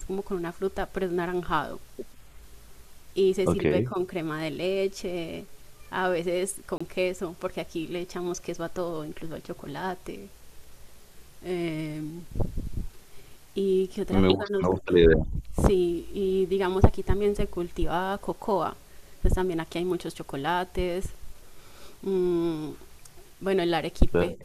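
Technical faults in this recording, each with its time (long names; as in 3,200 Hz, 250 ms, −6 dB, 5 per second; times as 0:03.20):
0:06.78–0:06.80: drop-out 25 ms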